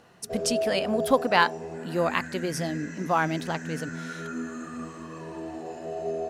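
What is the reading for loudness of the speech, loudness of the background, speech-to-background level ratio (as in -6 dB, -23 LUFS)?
-27.5 LUFS, -35.0 LUFS, 7.5 dB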